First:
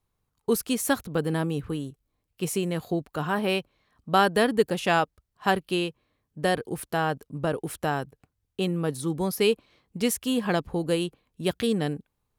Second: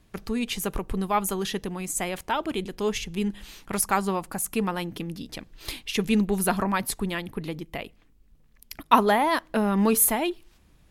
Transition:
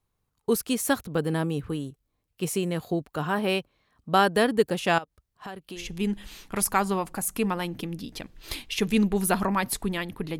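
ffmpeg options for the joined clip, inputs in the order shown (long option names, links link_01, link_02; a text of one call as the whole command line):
ffmpeg -i cue0.wav -i cue1.wav -filter_complex "[0:a]asettb=1/sr,asplit=3[link_01][link_02][link_03];[link_01]atrim=end=4.984[link_04];[link_02]atrim=start=4.98:end=5.91,asetpts=PTS-STARTPTS,afade=type=in:duration=0.004:curve=qsin,afade=type=out:start_time=0.926:duration=0.004:curve=qsin,acompressor=threshold=-37dB:ratio=4:attack=3.2:release=140:knee=1:detection=peak[link_05];[link_03]atrim=start=5.906[link_06];[link_04][link_05]acrossfade=duration=0.004:curve1=hsin:curve2=qsin[link_07];[link_07][link_06]acrossfade=duration=0.004:curve1=qsin:curve2=hsin,apad=whole_dur=10.39,atrim=end=10.39,atrim=end=5.91,asetpts=PTS-STARTPTS[link_08];[1:a]atrim=start=2.9:end=7.56,asetpts=PTS-STARTPTS[link_09];[link_08][link_09]acrossfade=duration=0.18:curve1=tri:curve2=tri" out.wav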